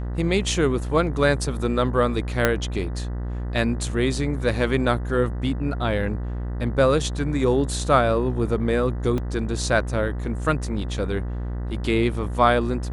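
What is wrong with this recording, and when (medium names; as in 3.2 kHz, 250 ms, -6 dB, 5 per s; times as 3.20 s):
buzz 60 Hz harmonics 33 -28 dBFS
2.45 s: pop -4 dBFS
9.18 s: dropout 2.7 ms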